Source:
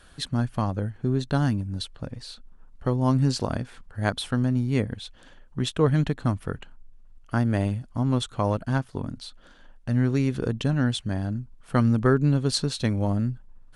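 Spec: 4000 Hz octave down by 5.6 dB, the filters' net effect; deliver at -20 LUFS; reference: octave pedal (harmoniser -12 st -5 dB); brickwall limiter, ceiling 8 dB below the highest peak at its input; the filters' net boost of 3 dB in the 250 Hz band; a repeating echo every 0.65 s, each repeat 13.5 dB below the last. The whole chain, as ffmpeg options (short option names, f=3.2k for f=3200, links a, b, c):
-filter_complex "[0:a]equalizer=f=250:t=o:g=3.5,equalizer=f=4k:t=o:g=-6.5,alimiter=limit=-14.5dB:level=0:latency=1,aecho=1:1:650|1300:0.211|0.0444,asplit=2[a][b];[b]asetrate=22050,aresample=44100,atempo=2,volume=-5dB[c];[a][c]amix=inputs=2:normalize=0,volume=5.5dB"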